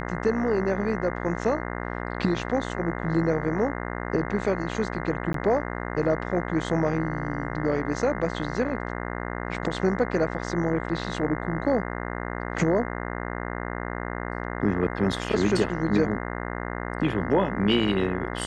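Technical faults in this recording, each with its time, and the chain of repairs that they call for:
buzz 60 Hz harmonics 35 -32 dBFS
5.33–5.34 gap 13 ms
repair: de-hum 60 Hz, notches 35; interpolate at 5.33, 13 ms

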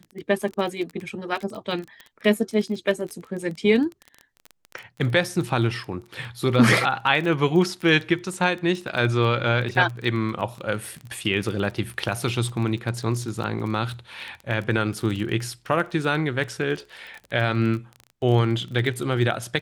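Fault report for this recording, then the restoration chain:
crackle 22/s -29 dBFS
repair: de-click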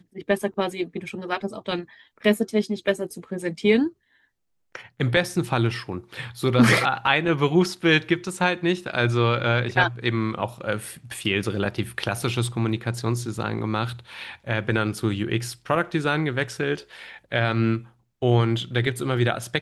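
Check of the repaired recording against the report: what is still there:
none

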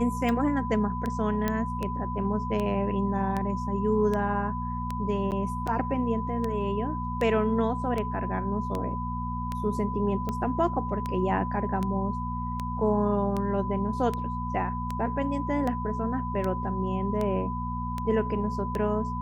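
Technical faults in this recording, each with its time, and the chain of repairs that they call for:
hum 60 Hz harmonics 4 -33 dBFS
tick 78 rpm -18 dBFS
tone 1000 Hz -33 dBFS
1.48 pop -13 dBFS
5.31–5.32 gap 8.6 ms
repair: de-click; notch 1000 Hz, Q 30; de-hum 60 Hz, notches 4; interpolate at 5.31, 8.6 ms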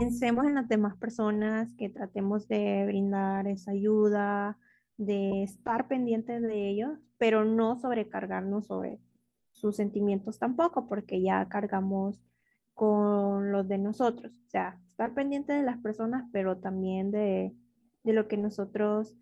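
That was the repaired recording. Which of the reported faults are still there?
1.48 pop

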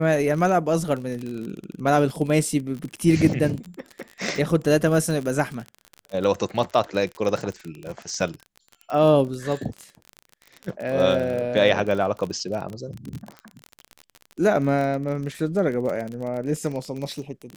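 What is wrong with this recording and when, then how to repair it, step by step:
crackle 35/s -28 dBFS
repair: de-click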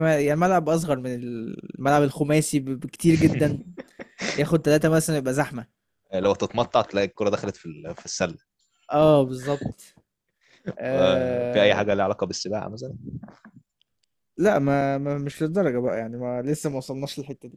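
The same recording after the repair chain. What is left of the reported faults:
none

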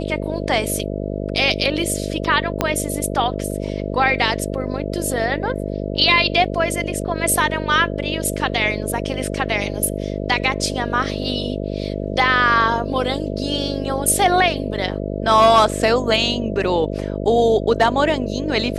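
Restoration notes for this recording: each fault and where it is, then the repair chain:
buzz 50 Hz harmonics 13 -25 dBFS
2.61 pop -3 dBFS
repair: de-click; de-hum 50 Hz, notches 13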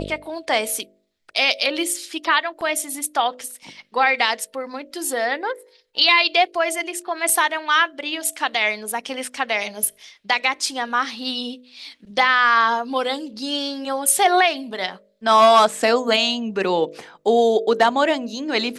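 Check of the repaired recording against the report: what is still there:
2.61 pop

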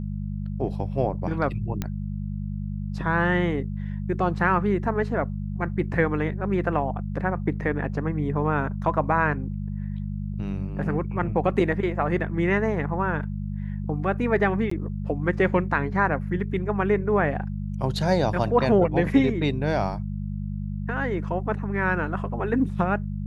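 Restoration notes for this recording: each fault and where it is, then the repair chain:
hum 50 Hz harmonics 4 -30 dBFS
1.82 pop -14 dBFS
14.7–14.71 gap 14 ms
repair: de-click; de-hum 50 Hz, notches 4; interpolate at 14.7, 14 ms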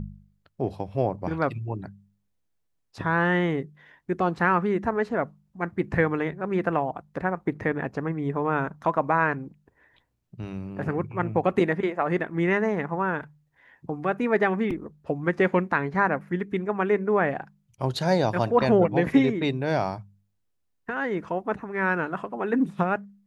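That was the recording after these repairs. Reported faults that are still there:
none

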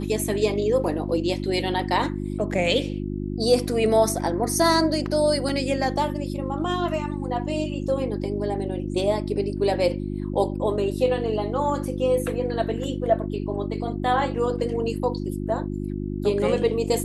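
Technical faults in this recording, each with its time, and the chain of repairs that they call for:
hum 50 Hz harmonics 7 -29 dBFS
5.49 gap 2.8 ms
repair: de-hum 50 Hz, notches 7; interpolate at 5.49, 2.8 ms

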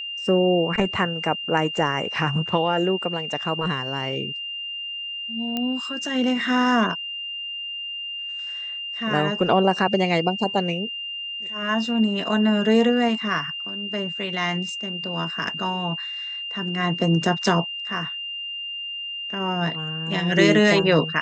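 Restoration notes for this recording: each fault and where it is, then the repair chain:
tone 2800 Hz -29 dBFS
5.57 pop -13 dBFS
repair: de-click; notch 2800 Hz, Q 30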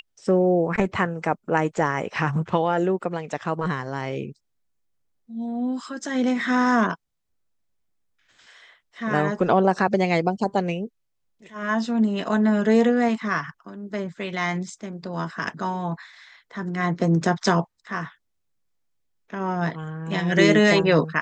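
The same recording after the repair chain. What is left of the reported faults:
none

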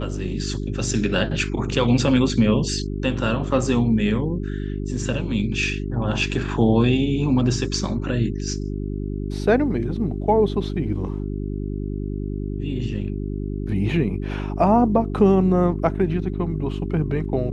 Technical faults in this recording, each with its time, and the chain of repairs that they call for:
hum 50 Hz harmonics 8 -27 dBFS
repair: de-hum 50 Hz, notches 8

